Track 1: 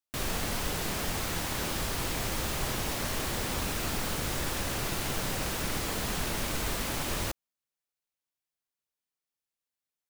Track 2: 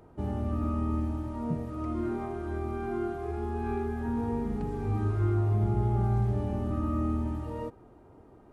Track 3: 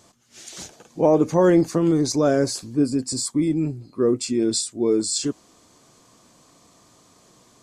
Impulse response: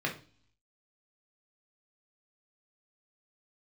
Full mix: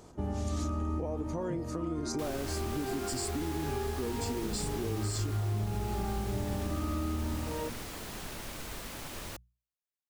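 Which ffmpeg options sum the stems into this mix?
-filter_complex "[0:a]bandreject=f=60:t=h:w=6,bandreject=f=120:t=h:w=6,bandreject=f=180:t=h:w=6,adelay=2050,volume=0.335[s0];[1:a]bandreject=f=116.9:t=h:w=4,bandreject=f=233.8:t=h:w=4,bandreject=f=350.7:t=h:w=4,volume=1.06[s1];[2:a]acompressor=threshold=0.0501:ratio=6,volume=0.473,asplit=2[s2][s3];[s3]apad=whole_len=375769[s4];[s1][s4]sidechaincompress=threshold=0.0126:ratio=3:attack=16:release=106[s5];[s0][s5][s2]amix=inputs=3:normalize=0,acompressor=threshold=0.0355:ratio=6"

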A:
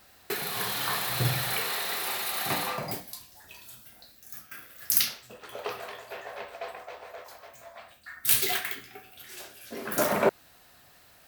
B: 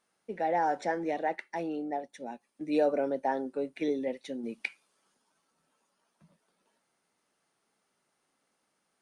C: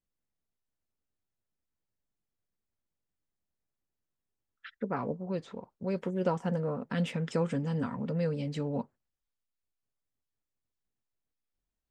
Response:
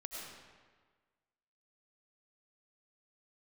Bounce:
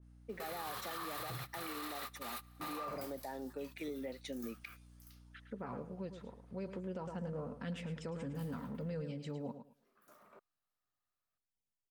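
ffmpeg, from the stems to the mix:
-filter_complex "[0:a]equalizer=f=1200:w=5.2:g=13.5,adelay=100,volume=0.282[s0];[1:a]acrossover=split=150[s1][s2];[s2]acompressor=threshold=0.0224:ratio=8[s3];[s1][s3]amix=inputs=2:normalize=0,aeval=exprs='val(0)+0.00224*(sin(2*PI*60*n/s)+sin(2*PI*2*60*n/s)/2+sin(2*PI*3*60*n/s)/3+sin(2*PI*4*60*n/s)/4+sin(2*PI*5*60*n/s)/5)':c=same,adynamicequalizer=threshold=0.00282:dfrequency=1900:dqfactor=0.7:tfrequency=1900:tqfactor=0.7:attack=5:release=100:ratio=0.375:range=2.5:mode=boostabove:tftype=highshelf,volume=0.562,asplit=2[s4][s5];[2:a]adelay=700,volume=0.355,asplit=2[s6][s7];[s7]volume=0.299[s8];[s5]apad=whole_len=501786[s9];[s0][s9]sidechaingate=range=0.0355:threshold=0.00398:ratio=16:detection=peak[s10];[s8]aecho=0:1:108|216|324:1|0.21|0.0441[s11];[s10][s4][s6][s11]amix=inputs=4:normalize=0,alimiter=level_in=2.99:limit=0.0631:level=0:latency=1:release=64,volume=0.335"

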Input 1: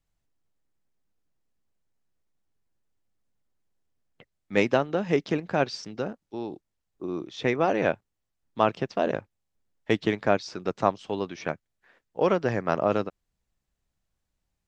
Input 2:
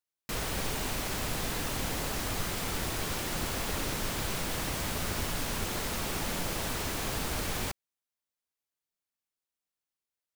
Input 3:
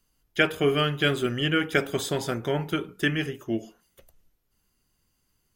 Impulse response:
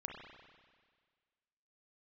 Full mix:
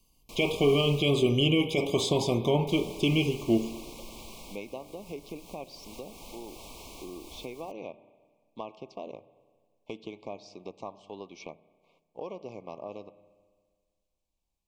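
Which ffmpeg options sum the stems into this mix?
-filter_complex "[0:a]volume=0.668,asplit=2[s0][s1];[s1]volume=0.0708[s2];[1:a]volume=0.335,asplit=3[s3][s4][s5];[s3]atrim=end=1.01,asetpts=PTS-STARTPTS,afade=t=out:st=1.006:d=0.004:c=hsin[s6];[s4]atrim=start=1.01:end=2.67,asetpts=PTS-STARTPTS,volume=0[s7];[s5]atrim=start=2.67,asetpts=PTS-STARTPTS,afade=t=in:d=0.004:c=hsin[s8];[s6][s7][s8]concat=n=3:v=0:a=1[s9];[2:a]alimiter=limit=0.126:level=0:latency=1:release=54,volume=1.19,asplit=2[s10][s11];[s11]volume=0.596[s12];[s0][s9]amix=inputs=2:normalize=0,equalizer=f=120:w=1.1:g=-8.5,acompressor=threshold=0.01:ratio=4,volume=1[s13];[3:a]atrim=start_sample=2205[s14];[s2][s12]amix=inputs=2:normalize=0[s15];[s15][s14]afir=irnorm=-1:irlink=0[s16];[s10][s13][s16]amix=inputs=3:normalize=0,acrossover=split=7300[s17][s18];[s18]acompressor=threshold=0.00282:ratio=4:attack=1:release=60[s19];[s17][s19]amix=inputs=2:normalize=0,asuperstop=centerf=1600:order=20:qfactor=1.6"

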